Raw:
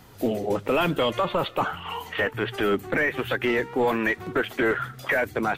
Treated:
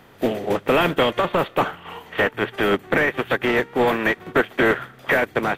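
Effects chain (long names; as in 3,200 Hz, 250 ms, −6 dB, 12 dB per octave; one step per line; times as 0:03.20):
compressor on every frequency bin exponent 0.6
0:01.19–0:02.02: floating-point word with a short mantissa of 6 bits
expander for the loud parts 2.5 to 1, over −29 dBFS
level +4 dB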